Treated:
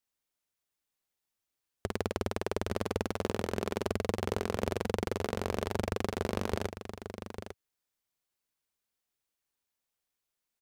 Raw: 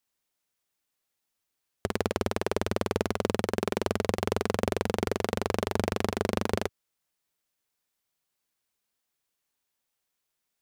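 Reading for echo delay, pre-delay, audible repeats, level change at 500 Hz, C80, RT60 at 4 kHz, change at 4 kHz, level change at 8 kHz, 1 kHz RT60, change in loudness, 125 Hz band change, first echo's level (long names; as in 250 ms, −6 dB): 849 ms, no reverb audible, 1, −4.5 dB, no reverb audible, no reverb audible, −5.0 dB, −5.0 dB, no reverb audible, −5.0 dB, −3.0 dB, −9.5 dB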